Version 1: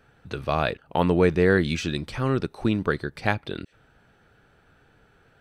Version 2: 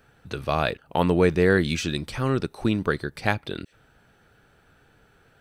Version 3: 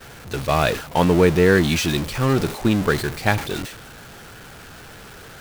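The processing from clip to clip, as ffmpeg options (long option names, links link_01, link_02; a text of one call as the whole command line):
ffmpeg -i in.wav -af "highshelf=frequency=6600:gain=8.5" out.wav
ffmpeg -i in.wav -af "aeval=exprs='val(0)+0.5*0.0668*sgn(val(0))':channel_layout=same,agate=range=-33dB:threshold=-22dB:ratio=3:detection=peak,volume=2.5dB" out.wav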